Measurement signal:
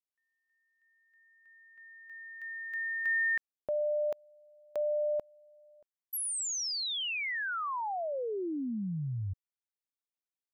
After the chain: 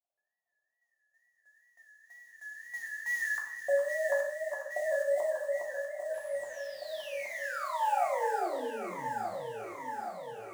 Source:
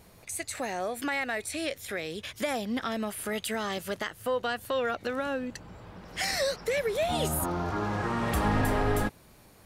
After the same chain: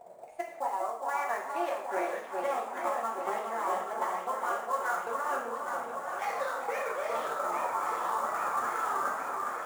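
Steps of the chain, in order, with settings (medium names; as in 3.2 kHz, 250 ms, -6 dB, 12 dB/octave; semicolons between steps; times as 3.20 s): auto-wah 640–1300 Hz, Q 6.3, up, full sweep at -24.5 dBFS; dynamic bell 460 Hz, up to +5 dB, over -58 dBFS, Q 0.76; transient shaper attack +10 dB, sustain -4 dB; high-pass 170 Hz 6 dB/octave; reverse; compression 10:1, threshold -45 dBFS; reverse; wow and flutter 110 cents; echo whose repeats swap between lows and highs 411 ms, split 1.3 kHz, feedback 82%, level -3.5 dB; in parallel at -4.5 dB: sample-rate reducer 8.5 kHz, jitter 20%; on the sum: gated-style reverb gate 210 ms falling, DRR -1.5 dB; modulated delay 396 ms, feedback 68%, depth 62 cents, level -14 dB; trim +7.5 dB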